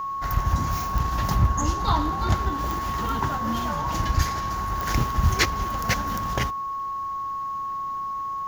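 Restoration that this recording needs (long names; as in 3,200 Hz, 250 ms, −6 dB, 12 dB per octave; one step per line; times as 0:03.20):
clipped peaks rebuilt −12 dBFS
click removal
notch filter 1,100 Hz, Q 30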